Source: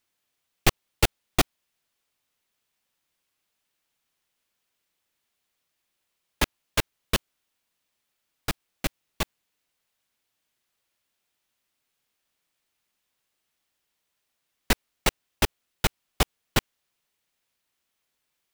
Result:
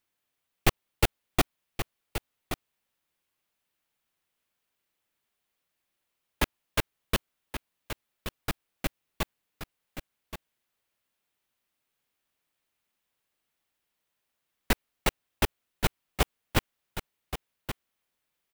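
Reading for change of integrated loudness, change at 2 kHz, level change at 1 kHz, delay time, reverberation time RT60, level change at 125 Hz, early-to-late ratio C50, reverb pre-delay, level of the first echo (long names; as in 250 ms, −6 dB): −4.5 dB, −2.5 dB, −2.0 dB, 1,126 ms, no reverb audible, −1.5 dB, no reverb audible, no reverb audible, −10.0 dB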